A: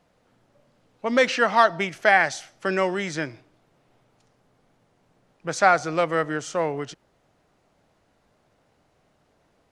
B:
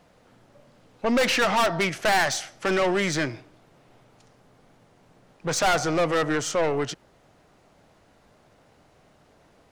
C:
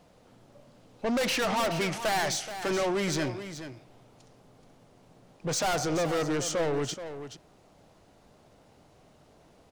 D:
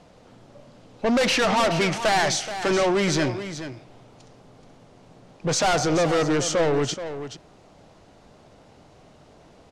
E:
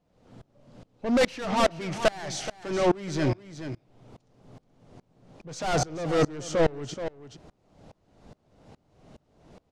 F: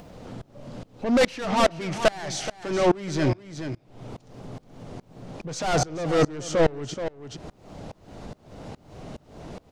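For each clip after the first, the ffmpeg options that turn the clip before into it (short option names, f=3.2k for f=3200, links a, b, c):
-af "aeval=exprs='(tanh(20*val(0)+0.25)-tanh(0.25))/20':c=same,volume=7.5dB"
-af "equalizer=f=1.7k:t=o:w=1.2:g=-5.5,asoftclip=type=tanh:threshold=-24.5dB,aecho=1:1:427:0.282"
-af "lowpass=7.9k,volume=7dB"
-af "lowshelf=f=430:g=7,aeval=exprs='val(0)*pow(10,-27*if(lt(mod(-2.4*n/s,1),2*abs(-2.4)/1000),1-mod(-2.4*n/s,1)/(2*abs(-2.4)/1000),(mod(-2.4*n/s,1)-2*abs(-2.4)/1000)/(1-2*abs(-2.4)/1000))/20)':c=same"
-af "acompressor=mode=upward:threshold=-31dB:ratio=2.5,volume=2.5dB"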